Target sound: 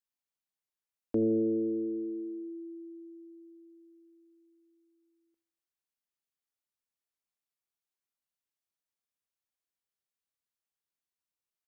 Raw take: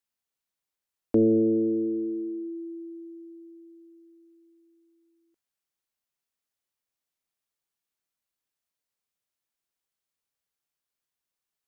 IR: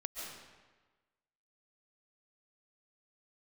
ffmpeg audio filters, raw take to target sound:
-af "aecho=1:1:81|162|243|324:0.112|0.0595|0.0315|0.0167,volume=-7.5dB"

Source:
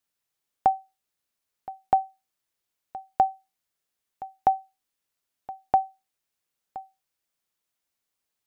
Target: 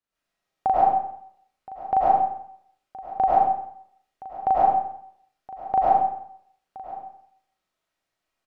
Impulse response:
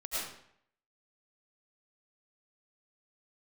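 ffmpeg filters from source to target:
-filter_complex "[0:a]aemphasis=mode=reproduction:type=75kf,aecho=1:1:37.9|119.5:1|0.355[link_01];[1:a]atrim=start_sample=2205[link_02];[link_01][link_02]afir=irnorm=-1:irlink=0,volume=2dB"

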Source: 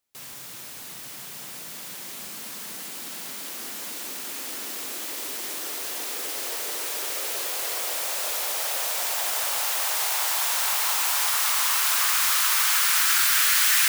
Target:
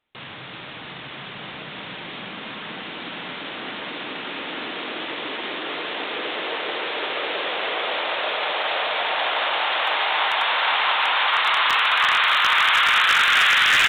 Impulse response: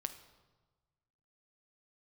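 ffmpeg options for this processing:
-filter_complex "[0:a]asplit=4[link_01][link_02][link_03][link_04];[link_02]adelay=302,afreqshift=-82,volume=-20dB[link_05];[link_03]adelay=604,afreqshift=-164,volume=-28.9dB[link_06];[link_04]adelay=906,afreqshift=-246,volume=-37.7dB[link_07];[link_01][link_05][link_06][link_07]amix=inputs=4:normalize=0,aresample=8000,aresample=44100,asplit=2[link_08][link_09];[1:a]atrim=start_sample=2205[link_10];[link_09][link_10]afir=irnorm=-1:irlink=0,volume=6.5dB[link_11];[link_08][link_11]amix=inputs=2:normalize=0,aeval=exprs='0.299*(abs(mod(val(0)/0.299+3,4)-2)-1)':channel_layout=same,volume=1dB"

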